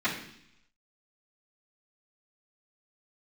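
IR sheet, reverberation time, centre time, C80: 0.70 s, 28 ms, 9.5 dB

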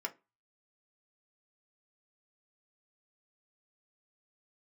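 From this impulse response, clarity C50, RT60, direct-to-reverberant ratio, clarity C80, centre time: 20.0 dB, 0.25 s, 1.5 dB, 27.5 dB, 7 ms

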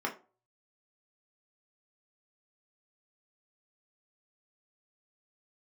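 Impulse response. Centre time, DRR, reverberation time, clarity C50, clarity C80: 15 ms, -1.0 dB, 0.35 s, 12.5 dB, 19.0 dB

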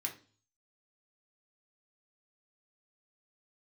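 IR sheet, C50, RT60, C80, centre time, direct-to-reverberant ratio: 12.0 dB, 0.40 s, 17.5 dB, 14 ms, 0.5 dB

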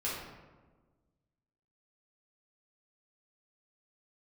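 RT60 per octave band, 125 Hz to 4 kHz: 1.9 s, 1.8 s, 1.5 s, 1.2 s, 0.95 s, 0.70 s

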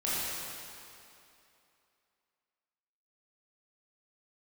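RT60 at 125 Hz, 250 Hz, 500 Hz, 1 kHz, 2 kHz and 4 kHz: 2.3 s, 2.6 s, 2.7 s, 2.8 s, 2.6 s, 2.4 s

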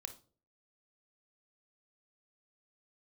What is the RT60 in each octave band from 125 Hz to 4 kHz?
0.60 s, 0.50 s, 0.50 s, 0.35 s, 0.25 s, 0.30 s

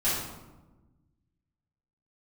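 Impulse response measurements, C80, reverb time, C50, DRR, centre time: 3.5 dB, 1.1 s, 0.5 dB, -13.5 dB, 68 ms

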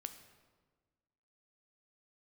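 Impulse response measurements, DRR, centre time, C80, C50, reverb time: 8.0 dB, 14 ms, 12.0 dB, 10.5 dB, 1.4 s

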